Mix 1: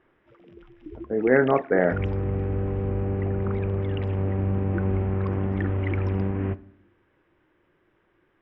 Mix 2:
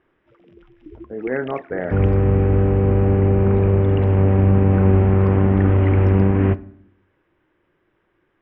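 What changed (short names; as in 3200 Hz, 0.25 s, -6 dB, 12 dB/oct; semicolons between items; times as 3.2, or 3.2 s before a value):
speech -5.0 dB; second sound +10.5 dB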